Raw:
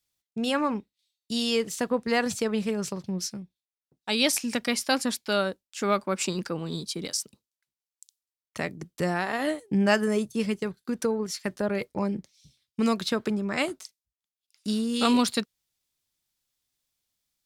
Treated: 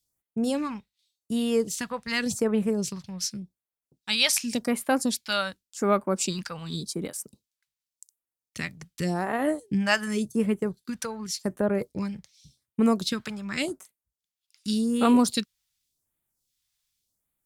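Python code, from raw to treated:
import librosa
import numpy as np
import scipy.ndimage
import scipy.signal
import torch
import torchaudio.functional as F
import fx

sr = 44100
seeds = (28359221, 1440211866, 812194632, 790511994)

y = fx.phaser_stages(x, sr, stages=2, low_hz=310.0, high_hz=5000.0, hz=0.88, feedback_pct=25)
y = y * librosa.db_to_amplitude(2.0)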